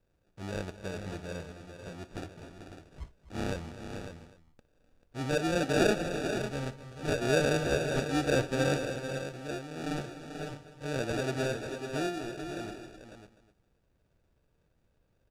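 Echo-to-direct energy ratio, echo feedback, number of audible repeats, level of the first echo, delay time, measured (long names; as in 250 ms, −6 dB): −5.5 dB, repeats not evenly spaced, 6, −19.0 dB, 59 ms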